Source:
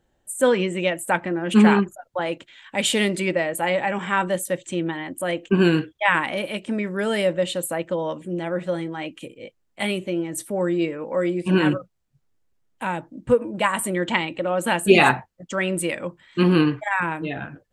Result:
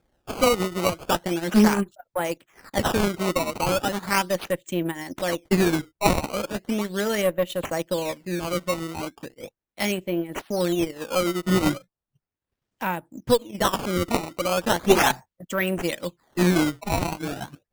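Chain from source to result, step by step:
one-sided soft clipper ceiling −17 dBFS
transient designer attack +1 dB, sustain −11 dB
sample-and-hold swept by an LFO 15×, swing 160% 0.37 Hz

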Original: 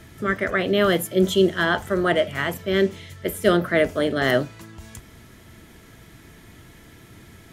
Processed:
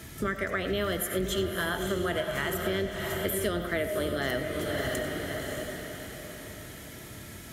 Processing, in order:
sub-octave generator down 2 octaves, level −3 dB
high-pass filter 63 Hz
high-shelf EQ 4,700 Hz +9 dB
feedback delay with all-pass diffusion 602 ms, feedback 43%, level −8 dB
convolution reverb RT60 0.40 s, pre-delay 50 ms, DRR 10.5 dB
downward compressor 6 to 1, threshold −27 dBFS, peak gain reduction 15 dB

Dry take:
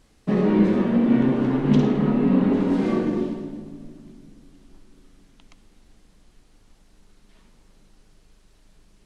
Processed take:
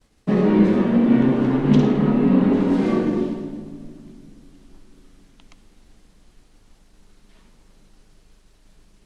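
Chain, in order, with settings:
downward expander −53 dBFS
level +2.5 dB

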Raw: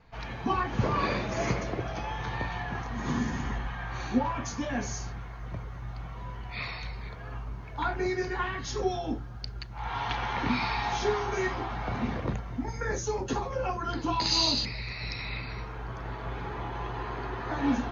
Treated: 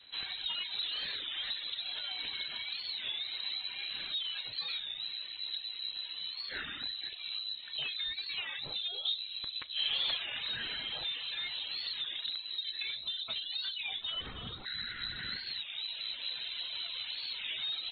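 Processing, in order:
gain into a clipping stage and back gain 25 dB
0:14.04–0:14.66: high-pass filter 290 Hz 6 dB per octave
downward compressor, threshold −34 dBFS, peak gain reduction 7.5 dB
surface crackle 200 per second −44 dBFS
reverb reduction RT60 0.81 s
0:09.05–0:10.19: parametric band 600 Hz +12.5 dB 1.5 octaves
convolution reverb RT60 1.4 s, pre-delay 5 ms, DRR 20 dB
voice inversion scrambler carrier 4,000 Hz
wow of a warped record 33 1/3 rpm, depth 160 cents

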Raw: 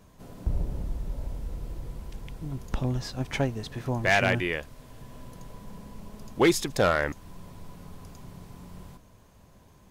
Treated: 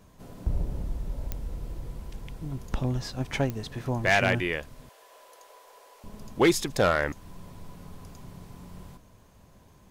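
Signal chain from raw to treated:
0:04.89–0:06.04: inverse Chebyshev high-pass filter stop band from 230 Hz, stop band 40 dB
digital clicks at 0:01.32/0:03.50, −17 dBFS

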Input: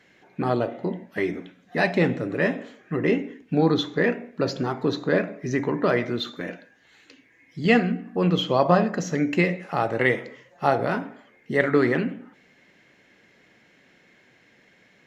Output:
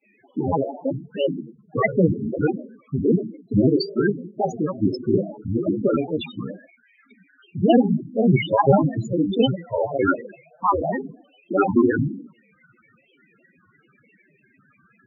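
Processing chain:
granular cloud 100 ms, grains 20 per second, spray 22 ms, pitch spread up and down by 7 semitones
spectral peaks only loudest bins 8
level +5.5 dB

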